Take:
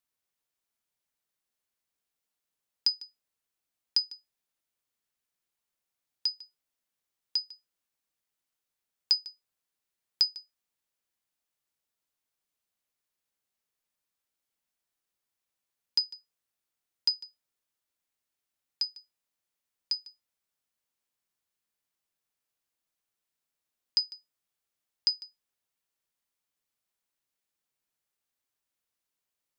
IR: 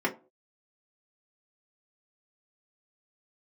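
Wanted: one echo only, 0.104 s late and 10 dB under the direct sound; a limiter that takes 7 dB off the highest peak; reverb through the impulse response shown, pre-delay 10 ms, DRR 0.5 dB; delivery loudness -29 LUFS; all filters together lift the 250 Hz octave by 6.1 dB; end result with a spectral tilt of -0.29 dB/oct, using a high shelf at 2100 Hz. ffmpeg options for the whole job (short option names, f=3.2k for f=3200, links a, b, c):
-filter_complex "[0:a]equalizer=f=250:t=o:g=8,highshelf=f=2.1k:g=-8.5,alimiter=level_in=1.5dB:limit=-24dB:level=0:latency=1,volume=-1.5dB,aecho=1:1:104:0.316,asplit=2[a][b];[1:a]atrim=start_sample=2205,adelay=10[c];[b][c]afir=irnorm=-1:irlink=0,volume=-11dB[d];[a][d]amix=inputs=2:normalize=0,volume=12.5dB"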